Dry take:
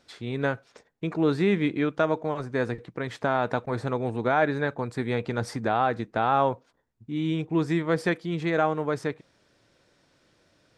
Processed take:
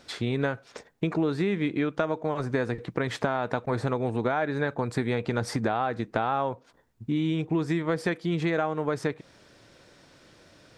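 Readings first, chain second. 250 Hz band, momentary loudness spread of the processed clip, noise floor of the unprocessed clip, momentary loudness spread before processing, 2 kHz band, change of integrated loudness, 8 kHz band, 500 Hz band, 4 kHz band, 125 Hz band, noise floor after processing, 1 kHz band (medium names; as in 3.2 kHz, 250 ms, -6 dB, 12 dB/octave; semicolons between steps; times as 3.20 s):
-0.5 dB, 4 LU, -66 dBFS, 9 LU, -2.0 dB, -1.5 dB, +3.0 dB, -2.0 dB, +0.5 dB, +0.5 dB, -59 dBFS, -3.5 dB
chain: compression 6:1, threshold -33 dBFS, peak gain reduction 15 dB; trim +9 dB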